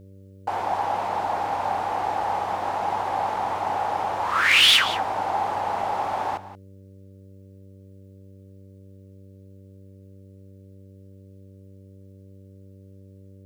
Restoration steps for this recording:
clipped peaks rebuilt −10 dBFS
hum removal 96.8 Hz, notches 6
echo removal 179 ms −15 dB

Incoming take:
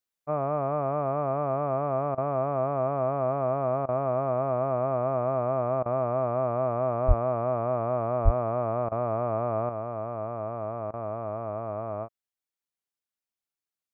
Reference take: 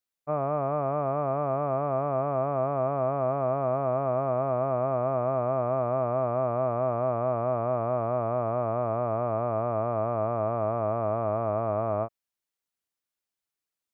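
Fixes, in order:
0:07.07–0:07.19: high-pass filter 140 Hz 24 dB per octave
0:08.24–0:08.36: high-pass filter 140 Hz 24 dB per octave
repair the gap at 0:02.15/0:03.86/0:05.83/0:08.89/0:10.91, 26 ms
0:09.69: level correction +5.5 dB

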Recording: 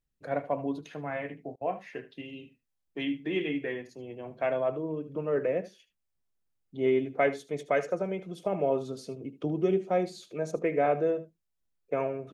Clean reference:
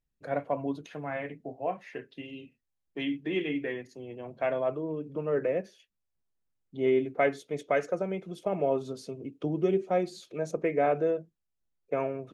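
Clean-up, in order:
repair the gap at 0:01.56, 50 ms
echo removal 76 ms −15.5 dB

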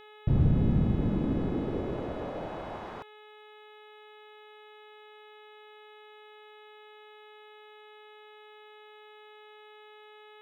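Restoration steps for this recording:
clipped peaks rebuilt −17 dBFS
hum removal 424.6 Hz, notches 9

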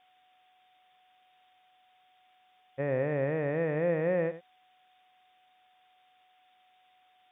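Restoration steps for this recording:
notch filter 740 Hz, Q 30
noise reduction from a noise print 12 dB
echo removal 87 ms −13.5 dB

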